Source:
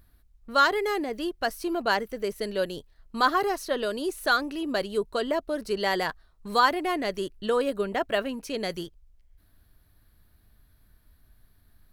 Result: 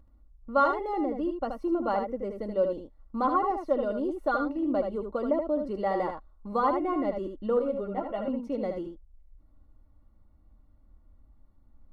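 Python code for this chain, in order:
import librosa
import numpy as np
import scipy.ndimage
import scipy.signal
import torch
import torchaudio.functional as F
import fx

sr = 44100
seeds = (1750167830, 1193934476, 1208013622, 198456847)

y = scipy.signal.savgol_filter(x, 65, 4, mode='constant')
y = y + 0.6 * np.pad(y, (int(3.6 * sr / 1000.0), 0))[:len(y)]
y = y + 10.0 ** (-6.0 / 20.0) * np.pad(y, (int(77 * sr / 1000.0), 0))[:len(y)]
y = fx.ensemble(y, sr, at=(7.59, 8.28))
y = y * librosa.db_to_amplitude(-1.5)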